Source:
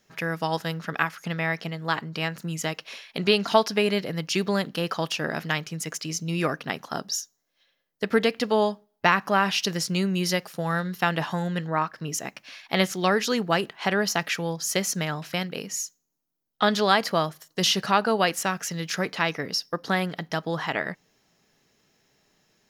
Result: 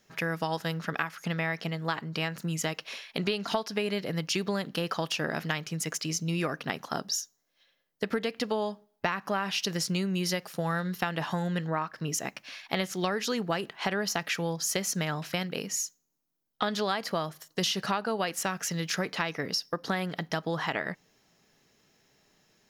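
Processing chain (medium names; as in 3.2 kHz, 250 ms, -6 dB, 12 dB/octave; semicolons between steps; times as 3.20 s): compression 6:1, threshold -26 dBFS, peak gain reduction 13 dB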